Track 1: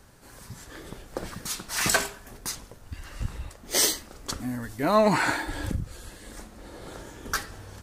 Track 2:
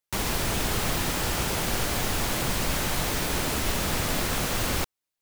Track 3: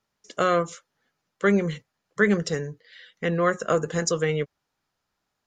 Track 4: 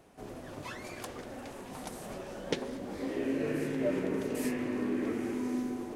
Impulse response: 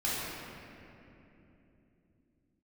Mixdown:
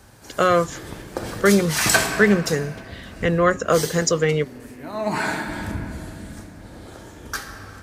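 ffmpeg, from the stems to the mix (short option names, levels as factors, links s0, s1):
-filter_complex "[0:a]volume=2.82,afade=t=out:st=2.1:d=0.3:silence=0.421697,afade=t=out:st=3.32:d=0.73:silence=0.354813,afade=t=in:st=4.95:d=0.24:silence=0.298538,asplit=2[s0][s1];[s1]volume=0.335[s2];[2:a]volume=1[s3];[3:a]volume=22.4,asoftclip=hard,volume=0.0447,adelay=250,volume=0.211[s4];[4:a]atrim=start_sample=2205[s5];[s2][s5]afir=irnorm=-1:irlink=0[s6];[s0][s3][s4][s6]amix=inputs=4:normalize=0,acontrast=22,highpass=48"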